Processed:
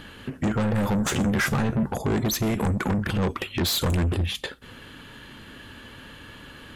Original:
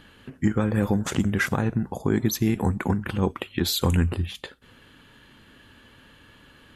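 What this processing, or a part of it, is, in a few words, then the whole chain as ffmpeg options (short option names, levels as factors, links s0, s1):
saturation between pre-emphasis and de-emphasis: -filter_complex "[0:a]highshelf=f=11000:g=9,asoftclip=type=tanh:threshold=0.0355,highshelf=f=11000:g=-9,asettb=1/sr,asplit=3[s0][s1][s2];[s0]atrim=end=0.984[s3];[s1]atrim=start=0.98:end=1.86,asetpts=PTS-STARTPTS,afade=t=in:d=0.004:c=qsin,afade=t=out:st=0.876:d=0.004:c=qsin,asplit=2[s4][s5];[s5]adelay=14,volume=0.398[s6];[s4][s6]amix=inputs=2:normalize=0,atrim=end_sample=38808[s7];[s2]atrim=start=1.856[s8];[s3][s7]acrossfade=d=0.004:c1=hsin:c2=qsin[s9];[s9][s8]acrossfade=d=0.004:c1=qsin:c2=hsin,volume=2.66"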